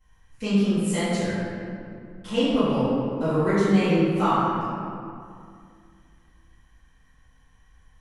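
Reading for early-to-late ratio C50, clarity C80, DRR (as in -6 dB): -4.0 dB, -1.5 dB, -17.5 dB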